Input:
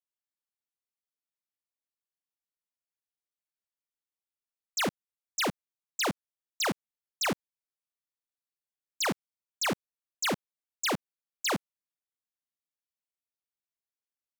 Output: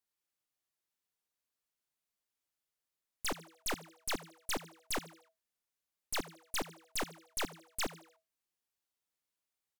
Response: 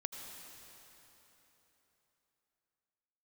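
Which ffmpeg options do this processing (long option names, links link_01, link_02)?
-filter_complex "[0:a]aeval=exprs='(tanh(178*val(0)+0.75)-tanh(0.75))/178':channel_layout=same,asplit=5[link_01][link_02][link_03][link_04][link_05];[link_02]adelay=109,afreqshift=110,volume=-17dB[link_06];[link_03]adelay=218,afreqshift=220,volume=-23.9dB[link_07];[link_04]adelay=327,afreqshift=330,volume=-30.9dB[link_08];[link_05]adelay=436,afreqshift=440,volume=-37.8dB[link_09];[link_01][link_06][link_07][link_08][link_09]amix=inputs=5:normalize=0,asetrate=64827,aresample=44100,volume=10.5dB"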